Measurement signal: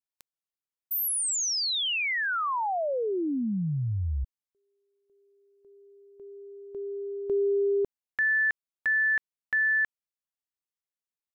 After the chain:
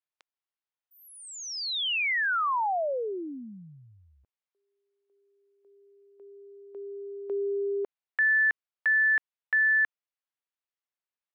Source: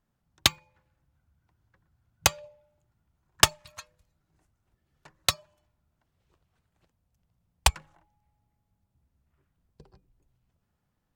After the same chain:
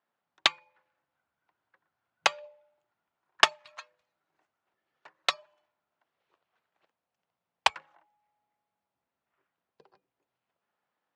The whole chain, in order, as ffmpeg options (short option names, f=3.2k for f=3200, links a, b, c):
-af "highpass=540,lowpass=3.3k,volume=2dB"